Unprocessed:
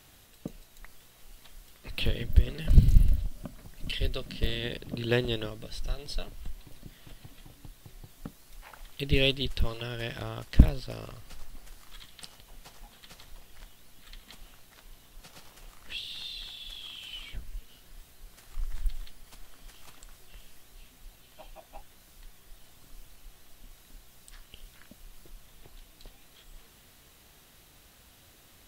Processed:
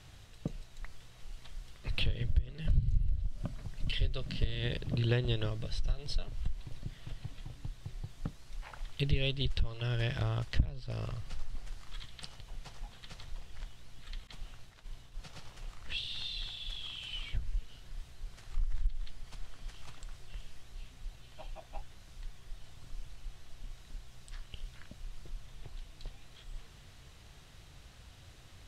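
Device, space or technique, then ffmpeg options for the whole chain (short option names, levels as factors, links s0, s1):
jukebox: -filter_complex "[0:a]lowpass=6800,lowshelf=f=170:t=q:w=1.5:g=6.5,acompressor=threshold=0.0501:ratio=5,asettb=1/sr,asplit=3[s0][s1][s2];[s0]atrim=end=14.274[s3];[s1]atrim=start=14.27:end=15.29,asetpts=PTS-STARTPTS,afade=t=in:d=0.004:c=qsin,afade=t=out:st=1.016:d=0.004:c=qsin,agate=range=0.0224:threshold=0.00501:ratio=3:detection=peak[s4];[s2]atrim=start=15.286[s5];[s3][s4]acrossfade=d=0.004:c1=hsin:c2=qsin[s6];[s6][s5]acrossfade=d=0.004:c1=qsin:c2=hsin"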